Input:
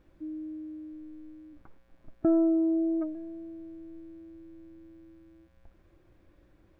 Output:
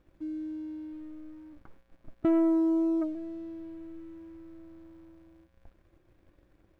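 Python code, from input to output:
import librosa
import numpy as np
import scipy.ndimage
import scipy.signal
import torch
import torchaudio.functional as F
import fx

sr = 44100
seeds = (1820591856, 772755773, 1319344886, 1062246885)

y = fx.leveller(x, sr, passes=1)
y = F.gain(torch.from_numpy(y), -2.0).numpy()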